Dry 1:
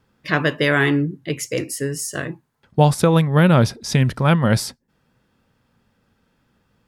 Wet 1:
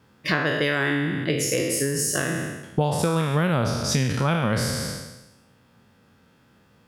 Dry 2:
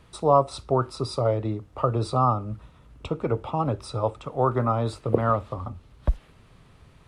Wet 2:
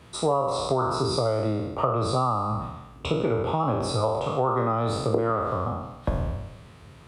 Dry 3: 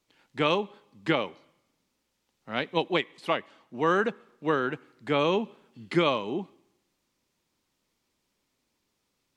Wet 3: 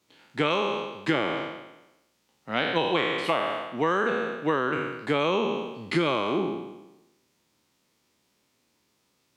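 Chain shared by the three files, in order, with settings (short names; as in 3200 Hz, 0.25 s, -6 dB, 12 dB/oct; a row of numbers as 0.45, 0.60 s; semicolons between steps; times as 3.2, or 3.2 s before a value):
spectral trails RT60 0.98 s; HPF 76 Hz 12 dB/oct; compressor 5:1, threshold -25 dBFS; gain +4 dB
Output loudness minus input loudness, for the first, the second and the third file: -5.0, 0.0, +1.5 LU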